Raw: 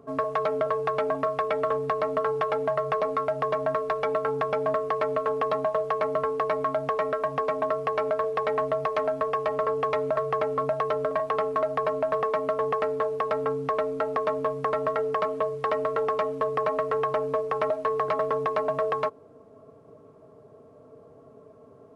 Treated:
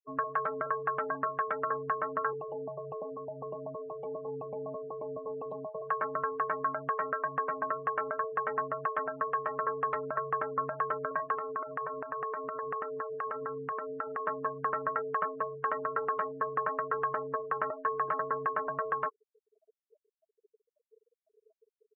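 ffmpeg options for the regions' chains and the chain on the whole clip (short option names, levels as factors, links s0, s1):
-filter_complex "[0:a]asettb=1/sr,asplit=3[s0][s1][s2];[s0]atrim=end=2.334[s3];[s1]atrim=start=2.33:end=5.82,asetpts=PTS-STARTPTS,afade=t=in:d=0.004:c=qsin,afade=t=out:st=3.486:d=0.004:c=qsin,asuperstop=centerf=1600:order=4:qfactor=0.62,highshelf=f=2400:g=-5.5[s4];[s2]atrim=start=5.816[s5];[s3][s4]acrossfade=d=0.004:c1=hsin:c2=qsin[s6];[s6][s5]acrossfade=d=0.004:c1=qsin:c2=hsin,asettb=1/sr,asplit=3[s7][s8][s9];[s7]atrim=end=11.344[s10];[s8]atrim=start=11.34:end=14.27,asetpts=PTS-STARTPTS,afade=t=in:d=0.004:c=qsin,afade=t=out:st=2.926:d=0.004:c=qsin,acompressor=threshold=0.0501:ratio=12:attack=3.2:release=140:knee=1:detection=peak,asplit=2[s11][s12];[s12]adelay=32,volume=0.224[s13];[s11][s13]amix=inputs=2:normalize=0,atrim=end_sample=129213[s14];[s9]atrim=start=14.266[s15];[s10][s14]acrossfade=d=0.004:c1=hsin:c2=qsin[s16];[s16][s15]acrossfade=d=0.004:c1=qsin:c2=hsin,equalizer=f=2600:t=o:w=0.66:g=9.5,afftfilt=real='re*gte(hypot(re,im),0.0282)':imag='im*gte(hypot(re,im),0.0282)':win_size=1024:overlap=0.75,firequalizer=gain_entry='entry(390,0);entry(640,-5);entry(990,4);entry(1600,10);entry(2400,-17)':delay=0.05:min_phase=1,volume=0.376"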